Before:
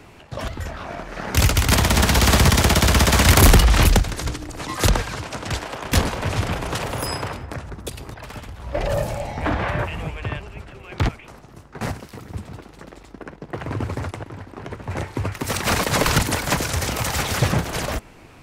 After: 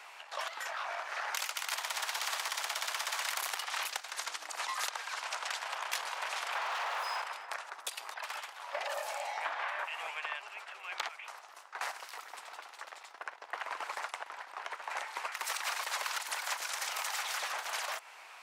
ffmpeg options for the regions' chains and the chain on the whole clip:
-filter_complex "[0:a]asettb=1/sr,asplit=3[s0][s1][s2];[s0]atrim=end=6.554[s3];[s1]atrim=start=6.55:end=7.22,asetpts=PTS-STARTPTS,afade=t=in:d=0.004:c=qsin,afade=t=out:st=0.666:d=0.004:c=qsin,equalizer=f=9000:w=2.3:g=-14,asplit=2[s4][s5];[s5]highpass=f=720:p=1,volume=56.2,asoftclip=type=tanh:threshold=0.237[s6];[s4][s6]amix=inputs=2:normalize=0,lowpass=f=1400:p=1,volume=0.501[s7];[s2]atrim=start=7.216[s8];[s3][s7]acrossfade=d=0.004:c1=hsin:c2=qsin[s9];[s9][s8]acrossfade=d=0.004:c1=qsin:c2=hsin,highpass=f=790:w=0.5412,highpass=f=790:w=1.3066,highshelf=f=10000:g=-5,acompressor=threshold=0.02:ratio=6"

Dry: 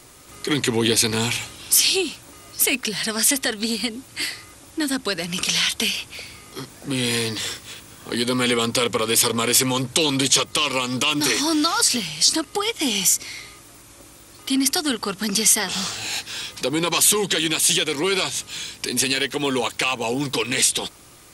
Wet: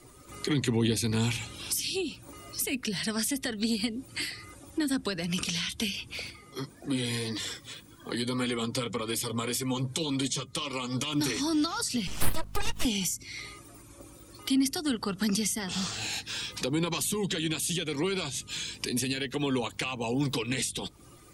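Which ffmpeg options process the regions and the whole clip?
-filter_complex "[0:a]asettb=1/sr,asplit=3[s0][s1][s2];[s0]atrim=end=6.304[s3];[s1]atrim=start=6.3:end=11.13,asetpts=PTS-STARTPTS,afade=t=in:d=0.004:c=qsin,afade=t=out:st=4.826:d=0.004:c=qsin,bandreject=f=2700:w=14,flanger=delay=2.8:depth=4.8:regen=45:speed=1.8:shape=sinusoidal[s4];[s2]atrim=start=11.126[s5];[s3][s4]acrossfade=d=0.004:c1=hsin:c2=qsin[s6];[s6][s5]acrossfade=d=0.004:c1=qsin:c2=hsin,asettb=1/sr,asplit=3[s7][s8][s9];[s7]atrim=end=12.074[s10];[s8]atrim=start=12.07:end=12.85,asetpts=PTS-STARTPTS,afade=t=in:d=0.004:c=qsin,afade=t=out:st=0.776:d=0.004:c=qsin,aeval=exprs='abs(val(0))':c=same,aeval=exprs='val(0)+0.00631*(sin(2*PI*50*n/s)+sin(2*PI*2*50*n/s)/2+sin(2*PI*3*50*n/s)/3+sin(2*PI*4*50*n/s)/4+sin(2*PI*5*50*n/s)/5)':c=same[s11];[s9]atrim=start=12.846[s12];[s10][s11]acrossfade=d=0.004:c1=hsin:c2=qsin[s13];[s13][s12]acrossfade=d=0.004:c1=qsin:c2=hsin,acrossover=split=250[s14][s15];[s15]acompressor=threshold=0.0251:ratio=4[s16];[s14][s16]amix=inputs=2:normalize=0,afftdn=nr=13:nf=-47"

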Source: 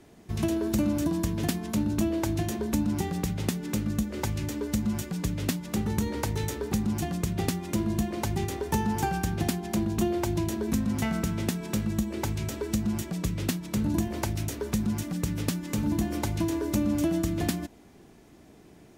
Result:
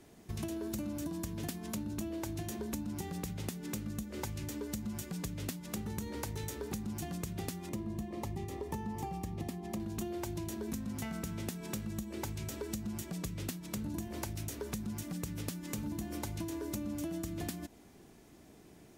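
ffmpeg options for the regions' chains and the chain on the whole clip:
-filter_complex "[0:a]asettb=1/sr,asplit=3[s0][s1][s2];[s0]atrim=end=7.694[s3];[s1]atrim=start=7.69:end=9.8,asetpts=PTS-STARTPTS,afade=t=in:d=0.004:c=qsin,afade=t=out:st=2.106:d=0.004:c=qsin,asuperstop=centerf=1500:order=20:qfactor=6.3,highshelf=f=2300:g=-9.5[s4];[s2]atrim=start=9.796[s5];[s3][s4]acrossfade=d=0.004:c1=hsin:c2=qsin[s6];[s6][s5]acrossfade=d=0.004:c1=qsin:c2=hsin,highshelf=f=5700:g=6,acompressor=threshold=0.0251:ratio=4,volume=0.596"

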